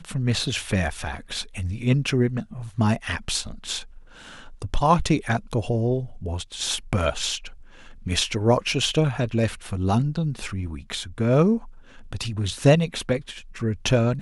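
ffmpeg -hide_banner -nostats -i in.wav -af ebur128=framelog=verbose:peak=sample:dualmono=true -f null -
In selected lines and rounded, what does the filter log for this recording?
Integrated loudness:
  I:         -21.4 LUFS
  Threshold: -31.8 LUFS
Loudness range:
  LRA:         2.6 LU
  Threshold: -41.9 LUFS
  LRA low:   -23.3 LUFS
  LRA high:  -20.7 LUFS
Sample peak:
  Peak:       -4.9 dBFS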